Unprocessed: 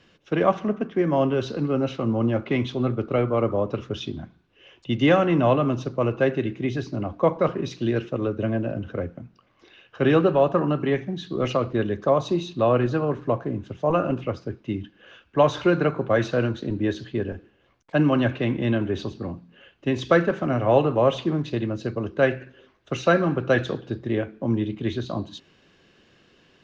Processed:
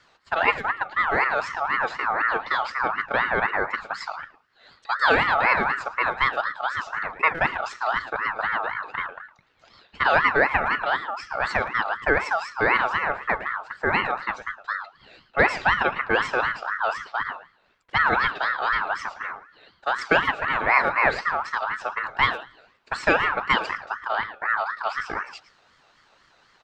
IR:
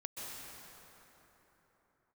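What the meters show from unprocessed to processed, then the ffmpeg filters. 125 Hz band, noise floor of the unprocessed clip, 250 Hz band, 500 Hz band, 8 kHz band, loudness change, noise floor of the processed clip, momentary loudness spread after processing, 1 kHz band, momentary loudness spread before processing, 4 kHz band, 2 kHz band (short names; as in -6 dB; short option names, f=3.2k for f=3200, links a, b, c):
-15.5 dB, -61 dBFS, -14.0 dB, -7.0 dB, n/a, 0.0 dB, -61 dBFS, 12 LU, +6.5 dB, 12 LU, +3.0 dB, +11.0 dB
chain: -filter_complex "[0:a]asplit=2[a][b];[b]adelay=110,highpass=300,lowpass=3.4k,asoftclip=type=hard:threshold=-13.5dB,volume=-12dB[c];[a][c]amix=inputs=2:normalize=0,aeval=exprs='val(0)*sin(2*PI*1300*n/s+1300*0.25/4*sin(2*PI*4*n/s))':c=same,volume=1.5dB"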